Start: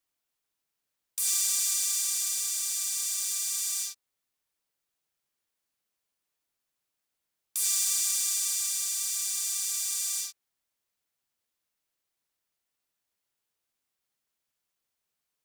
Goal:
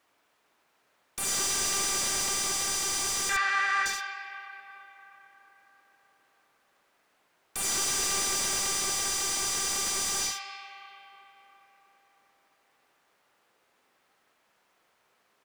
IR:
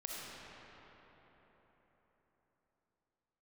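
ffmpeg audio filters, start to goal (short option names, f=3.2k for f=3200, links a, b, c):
-filter_complex "[0:a]asettb=1/sr,asplit=3[a][b][c];[a]atrim=end=3.294[d];[b]atrim=start=3.29:end=3.86,asetpts=PTS-STARTPTS,afade=t=in:d=0.004:c=qsin,afade=t=out:st=0.566:d=0.004:c=qsin,lowpass=f=1.7k:t=q:w=4.9[e];[c]atrim=start=3.856[f];[d][e]acrossfade=d=0.004:c1=hsin:c2=qsin[g];[g][f]acrossfade=d=0.004:c1=qsin:c2=hsin,aecho=1:1:73:0.398,asplit=2[h][i];[1:a]atrim=start_sample=2205,lowpass=2.9k[j];[i][j]afir=irnorm=-1:irlink=0,volume=-2dB[k];[h][k]amix=inputs=2:normalize=0,asplit=2[l][m];[m]highpass=f=720:p=1,volume=25dB,asoftclip=type=tanh:threshold=-10dB[n];[l][n]amix=inputs=2:normalize=0,lowpass=f=1.1k:p=1,volume=-6dB,volume=4.5dB"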